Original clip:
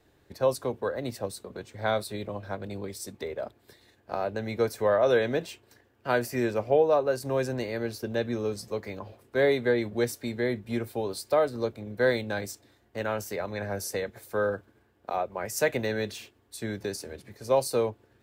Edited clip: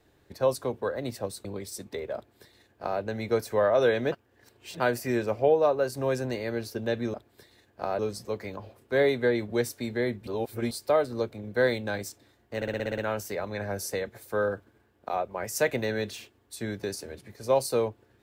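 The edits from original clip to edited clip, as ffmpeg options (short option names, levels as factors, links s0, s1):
-filter_complex "[0:a]asplit=15[s0][s1][s2][s3][s4][s5][s6][s7][s8][s9][s10][s11][s12][s13][s14];[s0]atrim=end=1.452[s15];[s1]atrim=start=2.728:end=5.402[s16];[s2]atrim=start=5.398:end=6.082,asetpts=PTS-STARTPTS,areverse[s17];[s3]atrim=start=6.078:end=8.422[s18];[s4]atrim=start=3.438:end=4.292[s19];[s5]atrim=start=8.418:end=10.702[s20];[s6]atrim=start=10.698:end=11.142,asetpts=PTS-STARTPTS,areverse[s21];[s7]atrim=start=11.138:end=13.052[s22];[s8]atrim=start=12.988:end=13.052[s23];[s9]atrim=start=12.988:end=13.052[s24];[s10]atrim=start=12.988:end=13.052[s25];[s11]atrim=start=12.988:end=13.052[s26];[s12]atrim=start=12.988:end=13.052[s27];[s13]atrim=start=12.988:end=13.052[s28];[s14]atrim=start=12.988[s29];[s15][s16]acrossfade=d=0.004:c1=hsin:c2=hsin[s30];[s30][s17]acrossfade=d=0.004:c1=hsin:c2=hsin[s31];[s31][s18]acrossfade=d=0.004:c1=hsin:c2=hsin[s32];[s32][s19]acrossfade=d=0.004:c1=hsin:c2=hsin[s33];[s33][s20]acrossfade=d=0.004:c1=hsin:c2=hsin[s34];[s34][s21]acrossfade=d=0.004:c1=hsin:c2=hsin[s35];[s35][s22]acrossfade=d=0.004:c1=hsin:c2=hsin[s36];[s36][s23]acrossfade=d=0.004:c1=hsin:c2=hsin[s37];[s37][s24]acrossfade=d=0.004:c1=hsin:c2=hsin[s38];[s38][s25]acrossfade=d=0.004:c1=hsin:c2=hsin[s39];[s39][s26]acrossfade=d=0.004:c1=hsin:c2=hsin[s40];[s40][s27]acrossfade=d=0.004:c1=hsin:c2=hsin[s41];[s41][s28]acrossfade=d=0.004:c1=hsin:c2=hsin[s42];[s42][s29]acrossfade=d=0.004:c1=hsin:c2=hsin"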